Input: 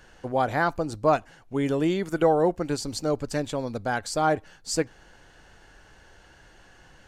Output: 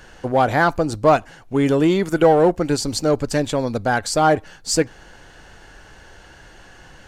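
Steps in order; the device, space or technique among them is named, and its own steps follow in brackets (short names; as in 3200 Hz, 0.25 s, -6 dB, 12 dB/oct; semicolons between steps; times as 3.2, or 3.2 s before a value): parallel distortion (in parallel at -6 dB: hard clip -23 dBFS, distortion -8 dB); on the sum: gain +5 dB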